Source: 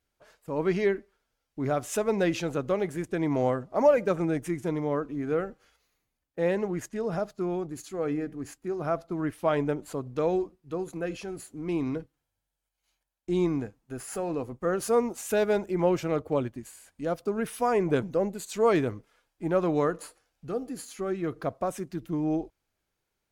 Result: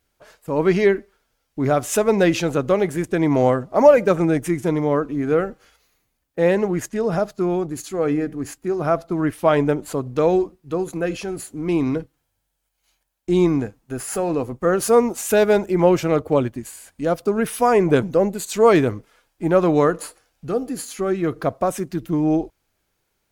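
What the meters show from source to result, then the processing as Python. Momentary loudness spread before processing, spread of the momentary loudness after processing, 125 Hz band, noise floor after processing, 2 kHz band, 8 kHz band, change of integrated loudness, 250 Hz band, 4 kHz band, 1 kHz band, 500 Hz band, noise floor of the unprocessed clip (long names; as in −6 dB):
12 LU, 12 LU, +9.0 dB, −73 dBFS, +9.0 dB, +10.0 dB, +9.0 dB, +9.0 dB, +9.5 dB, +9.0 dB, +9.0 dB, −83 dBFS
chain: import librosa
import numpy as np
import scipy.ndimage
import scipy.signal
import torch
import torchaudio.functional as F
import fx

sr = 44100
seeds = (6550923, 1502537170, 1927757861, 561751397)

y = fx.high_shelf(x, sr, hz=11000.0, db=4.0)
y = F.gain(torch.from_numpy(y), 9.0).numpy()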